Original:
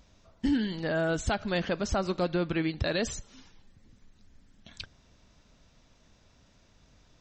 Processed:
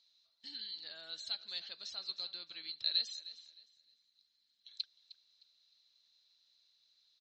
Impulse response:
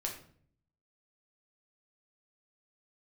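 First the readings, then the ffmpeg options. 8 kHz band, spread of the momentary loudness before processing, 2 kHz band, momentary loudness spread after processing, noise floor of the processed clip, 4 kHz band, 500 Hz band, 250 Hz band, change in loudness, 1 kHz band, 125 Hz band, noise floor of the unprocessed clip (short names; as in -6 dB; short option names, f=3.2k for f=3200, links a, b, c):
-14.5 dB, 15 LU, -19.5 dB, 20 LU, -78 dBFS, +3.0 dB, -32.0 dB, under -35 dB, -9.5 dB, -26.5 dB, under -40 dB, -63 dBFS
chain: -filter_complex "[0:a]bandpass=f=4.1k:t=q:w=17:csg=0,asplit=2[a][b];[b]aecho=0:1:308|616|924:0.15|0.0419|0.0117[c];[a][c]amix=inputs=2:normalize=0,volume=10dB"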